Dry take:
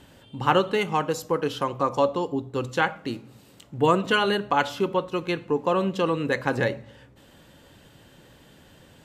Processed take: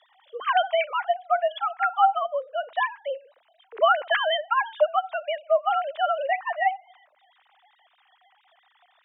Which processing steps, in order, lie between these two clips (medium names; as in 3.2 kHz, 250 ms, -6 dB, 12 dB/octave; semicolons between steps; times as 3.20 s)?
formants replaced by sine waves; frequency shift +220 Hz